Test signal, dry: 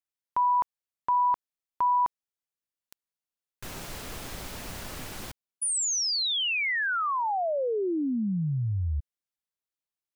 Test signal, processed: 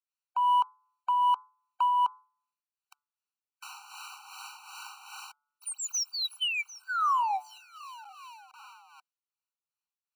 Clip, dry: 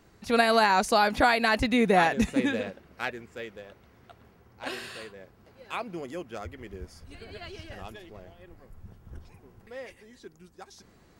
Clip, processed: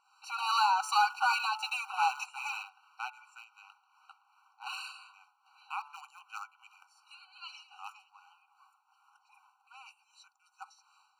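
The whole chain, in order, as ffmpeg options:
-filter_complex "[0:a]equalizer=f=7.6k:t=o:w=1.6:g=2.5,bandreject=f=145:t=h:w=4,bandreject=f=290:t=h:w=4,bandreject=f=435:t=h:w=4,bandreject=f=580:t=h:w=4,bandreject=f=725:t=h:w=4,bandreject=f=870:t=h:w=4,bandreject=f=1.015k:t=h:w=4,bandreject=f=1.16k:t=h:w=4,bandreject=f=1.305k:t=h:w=4,bandreject=f=1.45k:t=h:w=4,bandreject=f=1.595k:t=h:w=4,bandreject=f=1.74k:t=h:w=4,bandreject=f=1.885k:t=h:w=4,asplit=2[a][b];[b]aeval=exprs='val(0)*gte(abs(val(0)),0.0355)':c=same,volume=-6dB[c];[a][c]amix=inputs=2:normalize=0,acrossover=split=650[d][e];[d]aeval=exprs='val(0)*(1-0.7/2+0.7/2*cos(2*PI*2.6*n/s))':c=same[f];[e]aeval=exprs='val(0)*(1-0.7/2-0.7/2*cos(2*PI*2.6*n/s))':c=same[g];[f][g]amix=inputs=2:normalize=0,asplit=2[h][i];[i]highpass=f=720:p=1,volume=20dB,asoftclip=type=tanh:threshold=-6.5dB[j];[h][j]amix=inputs=2:normalize=0,lowpass=f=2.8k:p=1,volume=-6dB,afftfilt=real='re*eq(mod(floor(b*sr/1024/770),2),1)':imag='im*eq(mod(floor(b*sr/1024/770),2),1)':win_size=1024:overlap=0.75,volume=-9dB"

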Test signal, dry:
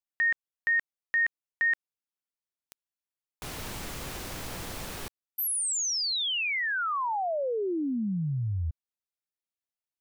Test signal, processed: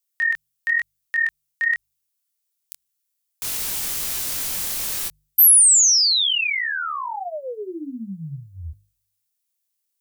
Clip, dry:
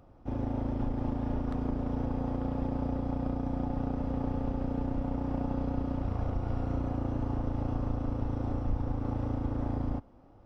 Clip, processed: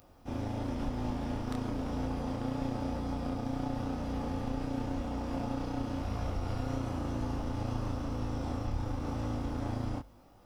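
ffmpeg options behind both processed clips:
-af "bandreject=f=50.41:t=h:w=4,bandreject=f=100.82:t=h:w=4,bandreject=f=151.23:t=h:w=4,flanger=delay=19.5:depth=7.5:speed=0.97,crystalizer=i=8:c=0"

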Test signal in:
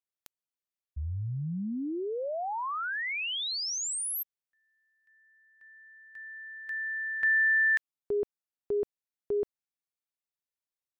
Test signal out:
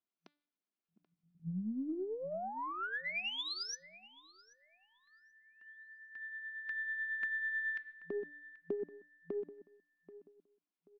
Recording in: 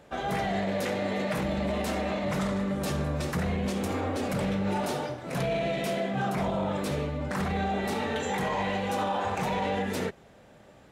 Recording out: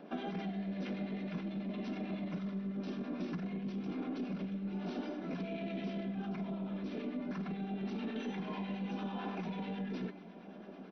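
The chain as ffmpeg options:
-filter_complex "[0:a]bass=f=250:g=15,treble=f=4k:g=-11,bandreject=f=1.9k:w=6.7,bandreject=f=293.1:t=h:w=4,bandreject=f=586.2:t=h:w=4,bandreject=f=879.3:t=h:w=4,bandreject=f=1.1724k:t=h:w=4,bandreject=f=1.4655k:t=h:w=4,bandreject=f=1.7586k:t=h:w=4,bandreject=f=2.0517k:t=h:w=4,bandreject=f=2.3448k:t=h:w=4,bandreject=f=2.6379k:t=h:w=4,bandreject=f=2.931k:t=h:w=4,bandreject=f=3.2241k:t=h:w=4,bandreject=f=3.5172k:t=h:w=4,bandreject=f=3.8103k:t=h:w=4,bandreject=f=4.1034k:t=h:w=4,bandreject=f=4.3965k:t=h:w=4,bandreject=f=4.6896k:t=h:w=4,bandreject=f=4.9827k:t=h:w=4,afftfilt=real='re*between(b*sr/4096,170,6000)':imag='im*between(b*sr/4096,170,6000)':win_size=4096:overlap=0.75,lowshelf=f=290:g=2,aecho=1:1:2.9:0.4,acrossover=split=330|1700[a][b][c];[b]acompressor=threshold=-42dB:ratio=2:attack=0.88:release=760:knee=2.83:detection=peak[d];[a][d][c]amix=inputs=3:normalize=0,alimiter=level_in=1dB:limit=-24dB:level=0:latency=1:release=11,volume=-1dB,acompressor=threshold=-36dB:ratio=16:attack=17:release=208:knee=6:detection=peak,acrossover=split=880[e][f];[e]aeval=exprs='val(0)*(1-0.5/2+0.5/2*cos(2*PI*9.1*n/s))':c=same[g];[f]aeval=exprs='val(0)*(1-0.5/2-0.5/2*cos(2*PI*9.1*n/s))':c=same[h];[g][h]amix=inputs=2:normalize=0,aeval=exprs='0.0422*(cos(1*acos(clip(val(0)/0.0422,-1,1)))-cos(1*PI/2))+0.000335*(cos(6*acos(clip(val(0)/0.0422,-1,1)))-cos(6*PI/2))':c=same,asplit=2[i][j];[j]adelay=783,lowpass=f=2.2k:p=1,volume=-16dB,asplit=2[k][l];[l]adelay=783,lowpass=f=2.2k:p=1,volume=0.31,asplit=2[m][n];[n]adelay=783,lowpass=f=2.2k:p=1,volume=0.31[o];[i][k][m][o]amix=inputs=4:normalize=0,volume=2dB"

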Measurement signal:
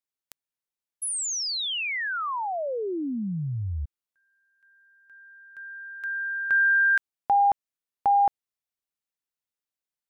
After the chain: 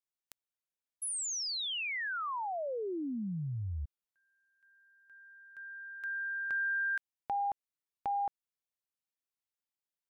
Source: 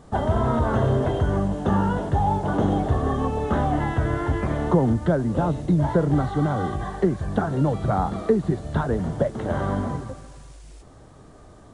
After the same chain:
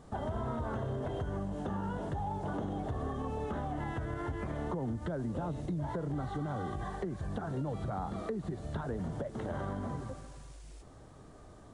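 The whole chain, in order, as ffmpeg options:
-af "acompressor=threshold=-25dB:ratio=6:attack=1.8:release=144:knee=6:detection=rms,volume=-6dB"

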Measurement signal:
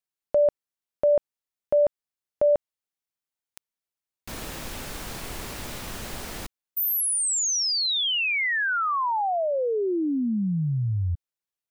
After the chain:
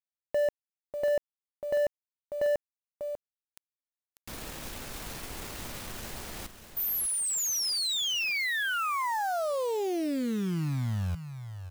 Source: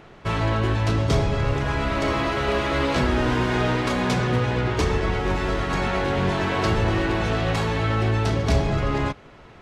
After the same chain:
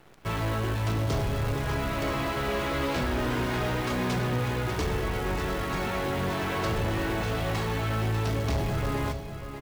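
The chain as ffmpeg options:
-af "acrusher=bits=7:dc=4:mix=0:aa=0.000001,aecho=1:1:594:0.316,volume=18dB,asoftclip=hard,volume=-18dB,volume=-5.5dB"

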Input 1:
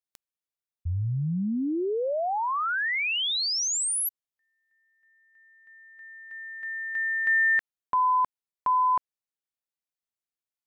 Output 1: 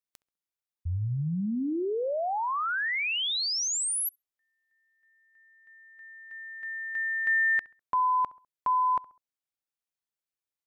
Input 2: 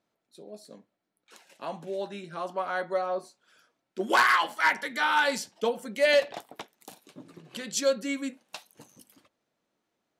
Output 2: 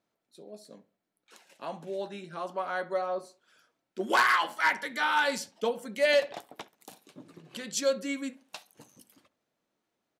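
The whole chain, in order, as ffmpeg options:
-filter_complex "[0:a]asplit=2[a][b];[b]adelay=67,lowpass=f=2.1k:p=1,volume=-20dB,asplit=2[c][d];[d]adelay=67,lowpass=f=2.1k:p=1,volume=0.39,asplit=2[e][f];[f]adelay=67,lowpass=f=2.1k:p=1,volume=0.39[g];[a][c][e][g]amix=inputs=4:normalize=0,volume=-2dB"

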